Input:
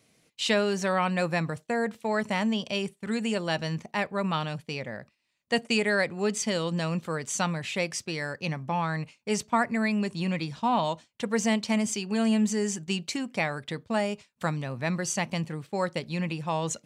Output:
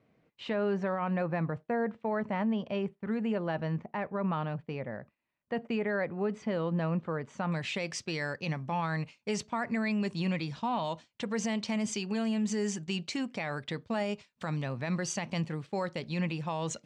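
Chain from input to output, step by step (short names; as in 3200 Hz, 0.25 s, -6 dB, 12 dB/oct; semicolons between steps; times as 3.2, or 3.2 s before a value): LPF 1500 Hz 12 dB/oct, from 7.52 s 5800 Hz; limiter -22.5 dBFS, peak gain reduction 9 dB; gain -1 dB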